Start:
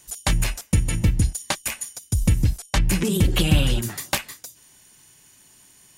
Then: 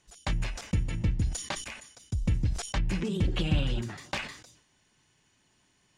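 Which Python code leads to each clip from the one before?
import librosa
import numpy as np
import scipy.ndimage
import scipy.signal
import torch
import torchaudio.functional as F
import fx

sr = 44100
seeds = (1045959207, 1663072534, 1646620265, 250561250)

y = fx.air_absorb(x, sr, metres=120.0)
y = fx.sustainer(y, sr, db_per_s=86.0)
y = F.gain(torch.from_numpy(y), -8.5).numpy()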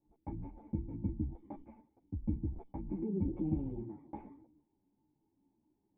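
y = fx.formant_cascade(x, sr, vowel='u')
y = fx.ensemble(y, sr)
y = F.gain(torch.from_numpy(y), 7.0).numpy()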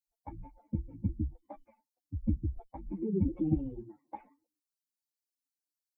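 y = fx.bin_expand(x, sr, power=2.0)
y = F.gain(torch.from_numpy(y), 8.0).numpy()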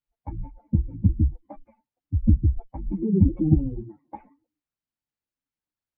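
y = fx.bass_treble(x, sr, bass_db=10, treble_db=-15)
y = F.gain(torch.from_numpy(y), 4.0).numpy()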